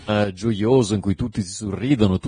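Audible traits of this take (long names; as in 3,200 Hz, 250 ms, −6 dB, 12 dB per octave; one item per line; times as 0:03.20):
sample-and-hold tremolo 4.2 Hz, depth 70%
Ogg Vorbis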